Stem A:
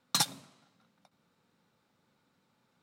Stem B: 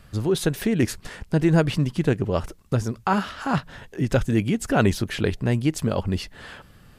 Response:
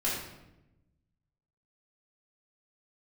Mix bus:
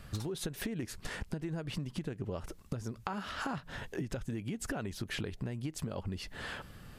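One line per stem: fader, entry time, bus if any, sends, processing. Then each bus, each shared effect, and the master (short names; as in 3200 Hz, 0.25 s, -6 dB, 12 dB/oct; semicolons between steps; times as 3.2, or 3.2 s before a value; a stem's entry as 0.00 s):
-8.5 dB, 0.00 s, no send, auto duck -12 dB, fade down 0.35 s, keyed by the second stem
-0.5 dB, 0.00 s, no send, compressor, threshold -27 dBFS, peak gain reduction 13.5 dB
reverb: off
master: compressor, threshold -34 dBFS, peak gain reduction 9.5 dB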